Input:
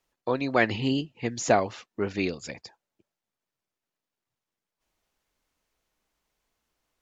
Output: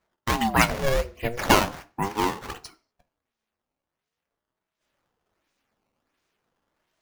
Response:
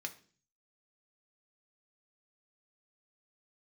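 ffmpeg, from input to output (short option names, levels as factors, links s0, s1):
-filter_complex "[0:a]acrusher=samples=15:mix=1:aa=0.000001:lfo=1:lforange=24:lforate=1.4,asplit=2[s0][s1];[1:a]atrim=start_sample=2205,afade=t=out:st=0.3:d=0.01,atrim=end_sample=13671[s2];[s1][s2]afir=irnorm=-1:irlink=0,volume=1.41[s3];[s0][s3]amix=inputs=2:normalize=0,aeval=exprs='val(0)*sin(2*PI*430*n/s+430*0.5/0.43*sin(2*PI*0.43*n/s))':c=same"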